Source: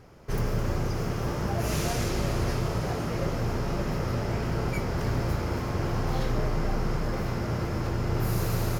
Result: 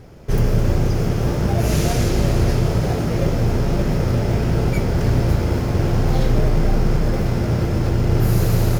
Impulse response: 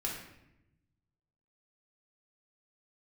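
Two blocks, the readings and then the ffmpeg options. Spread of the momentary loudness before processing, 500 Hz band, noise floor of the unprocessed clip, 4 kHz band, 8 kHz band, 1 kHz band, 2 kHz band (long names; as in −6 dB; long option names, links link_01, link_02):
2 LU, +8.5 dB, −32 dBFS, +6.5 dB, +6.5 dB, +5.0 dB, +5.0 dB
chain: -filter_complex "[0:a]equalizer=frequency=1100:width_type=o:width=0.66:gain=-6,asplit=2[link_01][link_02];[link_02]acrusher=samples=15:mix=1:aa=0.000001,volume=-9dB[link_03];[link_01][link_03]amix=inputs=2:normalize=0,lowshelf=frequency=210:gain=3,volume=6dB"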